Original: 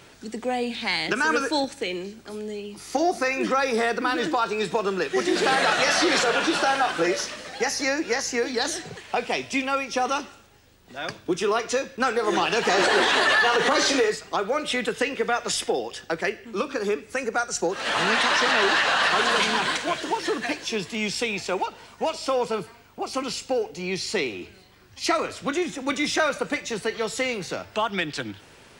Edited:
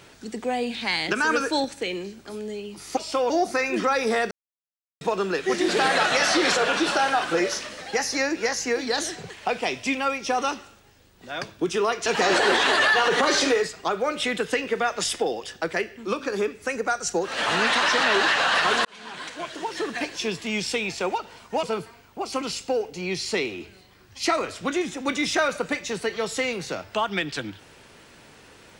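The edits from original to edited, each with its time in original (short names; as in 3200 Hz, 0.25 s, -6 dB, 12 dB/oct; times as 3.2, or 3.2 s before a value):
3.98–4.68 mute
11.73–12.54 cut
19.33–20.67 fade in
22.11–22.44 move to 2.97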